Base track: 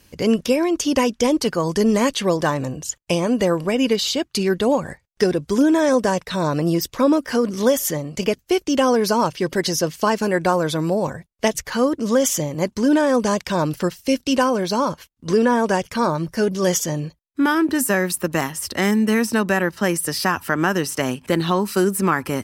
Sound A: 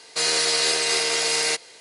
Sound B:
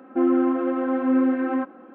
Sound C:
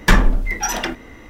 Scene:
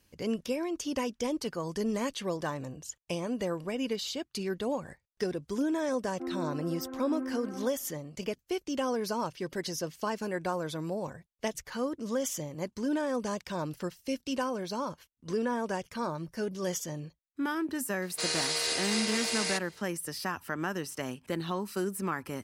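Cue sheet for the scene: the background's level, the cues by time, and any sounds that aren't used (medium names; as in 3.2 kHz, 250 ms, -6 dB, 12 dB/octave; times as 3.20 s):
base track -14 dB
6.04 s: add B -16 dB + distance through air 390 m
18.02 s: add A -9.5 dB
not used: C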